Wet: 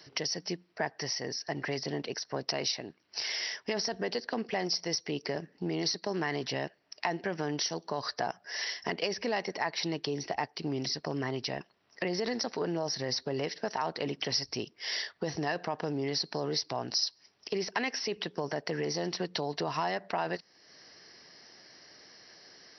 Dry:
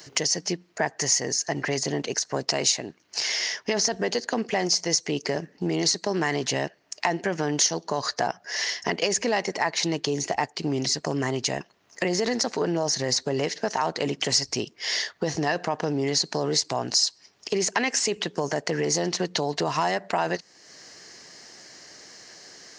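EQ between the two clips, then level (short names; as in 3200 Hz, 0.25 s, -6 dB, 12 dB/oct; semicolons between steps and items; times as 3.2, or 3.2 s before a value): brick-wall FIR low-pass 5900 Hz; -7.0 dB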